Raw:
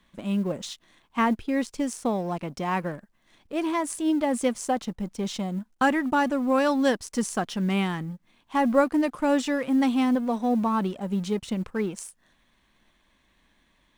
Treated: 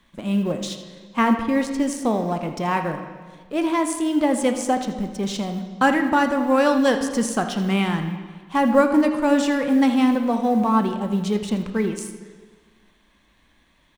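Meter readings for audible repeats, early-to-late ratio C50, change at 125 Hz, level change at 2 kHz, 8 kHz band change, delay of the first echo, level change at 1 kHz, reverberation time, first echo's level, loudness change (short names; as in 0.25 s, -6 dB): 1, 8.0 dB, +4.5 dB, +5.0 dB, +4.0 dB, 81 ms, +5.0 dB, 1.5 s, -14.5 dB, +5.0 dB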